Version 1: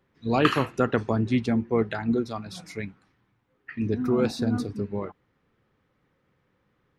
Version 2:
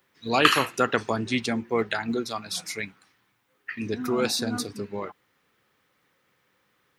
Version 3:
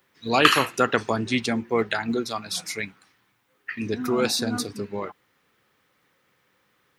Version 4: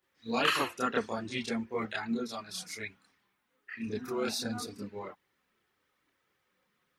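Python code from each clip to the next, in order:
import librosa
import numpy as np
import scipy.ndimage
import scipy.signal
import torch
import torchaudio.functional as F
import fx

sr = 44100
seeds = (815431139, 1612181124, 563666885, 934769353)

y1 = fx.tilt_eq(x, sr, slope=3.5)
y1 = F.gain(torch.from_numpy(y1), 3.0).numpy()
y2 = np.clip(y1, -10.0 ** (-3.5 / 20.0), 10.0 ** (-3.5 / 20.0))
y2 = F.gain(torch.from_numpy(y2), 2.0).numpy()
y3 = fx.chorus_voices(y2, sr, voices=4, hz=0.39, base_ms=29, depth_ms=2.9, mix_pct=65)
y3 = F.gain(torch.from_numpy(y3), -7.0).numpy()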